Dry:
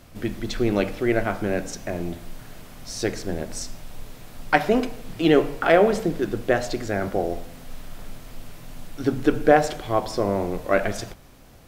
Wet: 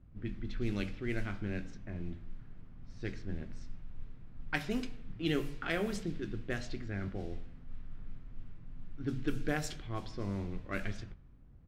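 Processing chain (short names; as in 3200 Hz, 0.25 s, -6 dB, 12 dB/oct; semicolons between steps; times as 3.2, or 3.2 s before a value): low-pass opened by the level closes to 850 Hz, open at -14 dBFS; passive tone stack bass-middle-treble 6-0-2; doubler 21 ms -13.5 dB; gain +7 dB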